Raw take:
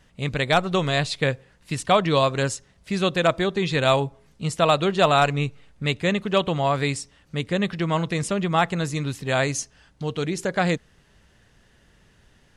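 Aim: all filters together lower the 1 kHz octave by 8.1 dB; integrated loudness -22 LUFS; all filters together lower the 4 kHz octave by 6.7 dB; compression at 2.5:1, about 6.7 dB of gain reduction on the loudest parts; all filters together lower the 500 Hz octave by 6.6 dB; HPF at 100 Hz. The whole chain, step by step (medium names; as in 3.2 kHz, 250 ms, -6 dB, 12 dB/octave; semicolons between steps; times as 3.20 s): high-pass 100 Hz; peaking EQ 500 Hz -5.5 dB; peaking EQ 1 kHz -9 dB; peaking EQ 4 kHz -7.5 dB; compression 2.5:1, threshold -30 dBFS; trim +11 dB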